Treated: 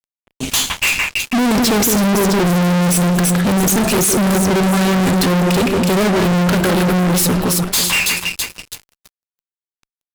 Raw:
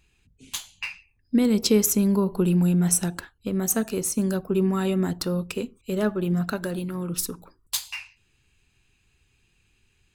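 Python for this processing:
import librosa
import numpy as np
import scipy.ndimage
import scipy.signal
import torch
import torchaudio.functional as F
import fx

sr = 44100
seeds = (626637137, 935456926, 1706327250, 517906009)

y = fx.echo_alternate(x, sr, ms=164, hz=2500.0, feedback_pct=61, wet_db=-7.5)
y = fx.fuzz(y, sr, gain_db=44.0, gate_db=-53.0)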